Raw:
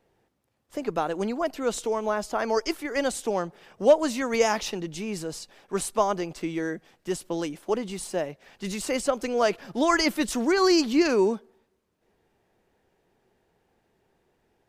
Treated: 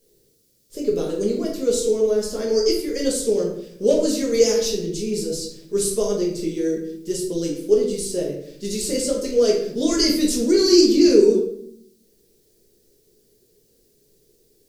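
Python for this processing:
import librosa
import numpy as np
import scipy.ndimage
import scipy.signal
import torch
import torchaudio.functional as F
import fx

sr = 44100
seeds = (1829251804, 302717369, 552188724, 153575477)

y = fx.quant_dither(x, sr, seeds[0], bits=12, dither='triangular')
y = fx.curve_eq(y, sr, hz=(310.0, 450.0, 770.0, 2900.0, 4600.0), db=(0, 8, -20, -6, 6))
y = fx.room_shoebox(y, sr, seeds[1], volume_m3=130.0, walls='mixed', distance_m=1.3)
y = y * librosa.db_to_amplitude(-1.0)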